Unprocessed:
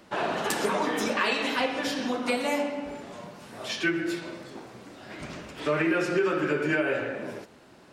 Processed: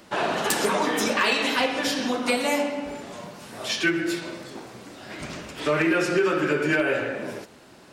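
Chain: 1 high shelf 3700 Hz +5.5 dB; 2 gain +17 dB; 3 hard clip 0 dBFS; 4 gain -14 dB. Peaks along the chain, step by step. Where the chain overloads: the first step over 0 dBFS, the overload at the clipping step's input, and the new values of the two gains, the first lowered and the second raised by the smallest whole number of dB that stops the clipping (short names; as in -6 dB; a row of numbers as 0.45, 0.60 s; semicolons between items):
-9.0, +8.0, 0.0, -14.0 dBFS; step 2, 8.0 dB; step 2 +9 dB, step 4 -6 dB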